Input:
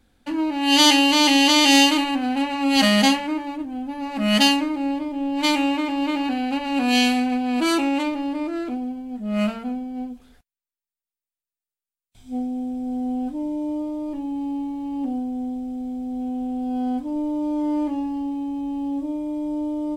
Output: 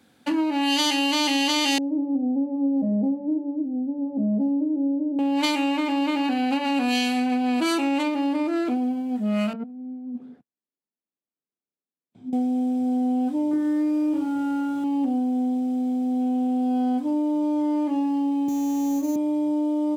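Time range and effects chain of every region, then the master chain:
0:01.78–0:05.19: inverse Chebyshev low-pass filter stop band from 1,300 Hz, stop band 50 dB + parametric band 69 Hz −14 dB 1.7 octaves
0:09.53–0:12.33: resonant band-pass 260 Hz, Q 1.5 + compressor whose output falls as the input rises −39 dBFS
0:13.51–0:14.84: parametric band 1,300 Hz −6 dB 1.8 octaves + leveller curve on the samples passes 1 + flutter between parallel walls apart 3.9 metres, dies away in 0.47 s
0:18.48–0:19.16: high-pass filter 210 Hz + sample-rate reduction 6,600 Hz
whole clip: high-pass filter 120 Hz 24 dB per octave; downward compressor 6 to 1, threshold −26 dBFS; level +5.5 dB

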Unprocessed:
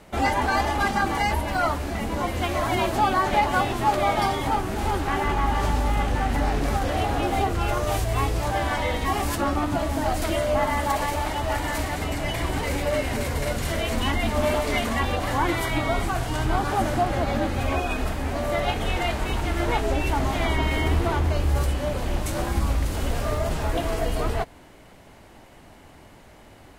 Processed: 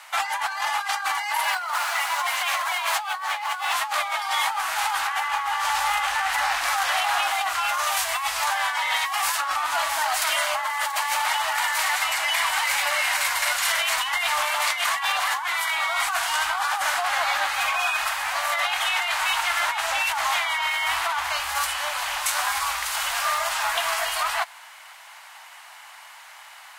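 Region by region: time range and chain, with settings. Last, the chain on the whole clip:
0:01.23–0:03.74: Butterworth high-pass 460 Hz + feedback echo at a low word length 94 ms, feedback 80%, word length 7 bits, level −14 dB
whole clip: inverse Chebyshev high-pass filter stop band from 460 Hz, stop band 40 dB; compressor whose output falls as the input rises −33 dBFS, ratio −1; level +8.5 dB

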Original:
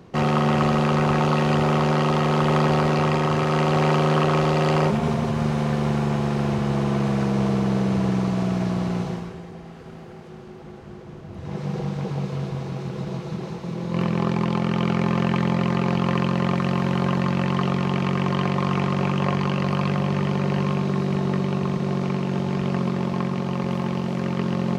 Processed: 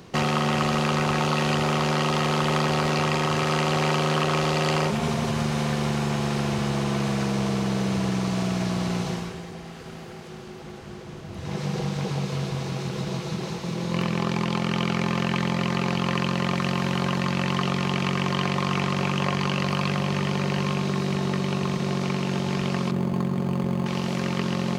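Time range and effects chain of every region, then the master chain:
0:22.91–0:23.86: tilt shelving filter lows +4.5 dB, about 640 Hz + linearly interpolated sample-rate reduction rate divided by 8×
whole clip: downward compressor 2.5 to 1, threshold −23 dBFS; high-shelf EQ 2,100 Hz +11.5 dB

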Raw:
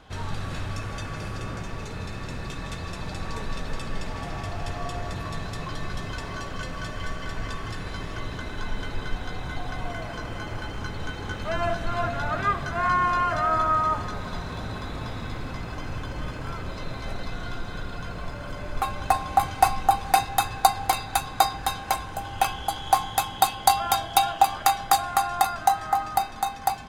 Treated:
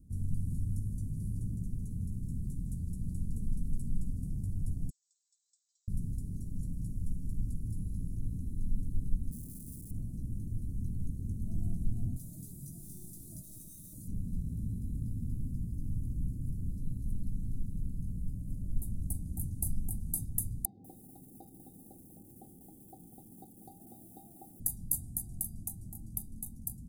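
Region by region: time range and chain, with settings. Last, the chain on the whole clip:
0:04.90–0:05.88: linear-phase brick-wall band-pass 2,000–8,200 Hz + high-shelf EQ 4,100 Hz −9 dB
0:09.31–0:09.91: wrap-around overflow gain 30 dB + high-shelf EQ 8,600 Hz −10 dB
0:12.16–0:14.08: spectral tilt +3.5 dB per octave + comb filter 6.3 ms, depth 45% + hard clipping −23 dBFS
0:20.65–0:24.60: loudspeaker in its box 330–2,800 Hz, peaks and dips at 360 Hz +6 dB, 520 Hz +4 dB, 770 Hz +9 dB, 1,100 Hz −5 dB, 1,500 Hz +10 dB, 2,200 Hz +10 dB + feedback echo at a low word length 194 ms, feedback 35%, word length 6 bits, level −14.5 dB
whole clip: elliptic band-stop filter 230–9,900 Hz, stop band 70 dB; dynamic equaliser 350 Hz, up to −3 dB, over −52 dBFS, Q 0.82

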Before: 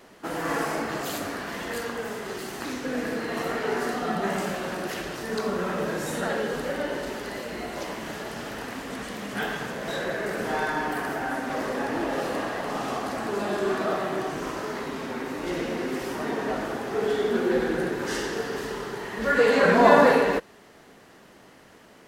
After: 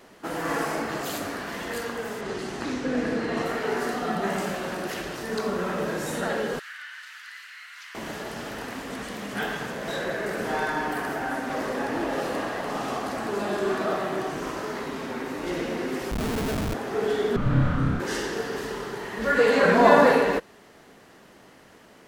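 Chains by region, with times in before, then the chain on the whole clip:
0:02.21–0:03.46: low-pass filter 7,400 Hz + low-shelf EQ 460 Hz +5 dB
0:06.59–0:07.95: Butterworth high-pass 1,400 Hz + high-shelf EQ 4,200 Hz −10.5 dB
0:16.11–0:16.74: comb filter 4.5 ms, depth 72% + comparator with hysteresis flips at −24.5 dBFS
0:17.36–0:18.00: low-pass filter 1,900 Hz 6 dB per octave + flutter between parallel walls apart 5.1 metres, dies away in 0.7 s + frequency shifter −240 Hz
whole clip: no processing

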